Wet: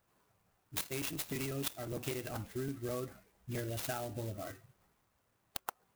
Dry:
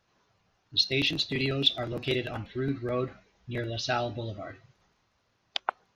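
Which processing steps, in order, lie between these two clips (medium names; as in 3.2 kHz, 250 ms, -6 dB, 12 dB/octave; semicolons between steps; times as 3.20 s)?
low-pass 5.3 kHz 12 dB/octave; compression 12:1, threshold -31 dBFS, peak gain reduction 14.5 dB; sampling jitter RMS 0.07 ms; trim -3.5 dB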